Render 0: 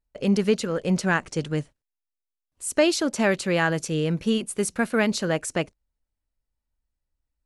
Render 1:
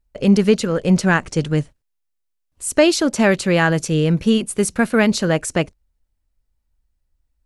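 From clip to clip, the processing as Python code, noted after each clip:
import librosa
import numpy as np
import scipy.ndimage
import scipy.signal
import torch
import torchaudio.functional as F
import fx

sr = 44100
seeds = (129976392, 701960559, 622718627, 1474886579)

y = fx.low_shelf(x, sr, hz=140.0, db=7.5)
y = y * librosa.db_to_amplitude(5.5)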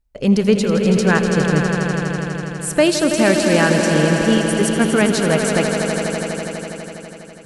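y = fx.echo_swell(x, sr, ms=82, loudest=5, wet_db=-9)
y = y * librosa.db_to_amplitude(-1.0)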